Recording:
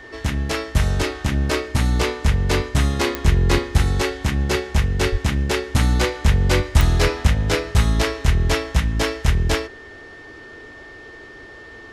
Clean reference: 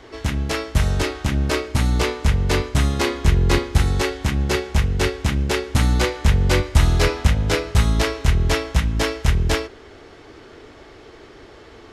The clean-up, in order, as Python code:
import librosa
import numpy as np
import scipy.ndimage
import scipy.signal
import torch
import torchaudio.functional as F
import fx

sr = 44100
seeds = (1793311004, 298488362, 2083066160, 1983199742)

y = fx.fix_declick_ar(x, sr, threshold=10.0)
y = fx.notch(y, sr, hz=1800.0, q=30.0)
y = fx.highpass(y, sr, hz=140.0, slope=24, at=(5.11, 5.23), fade=0.02)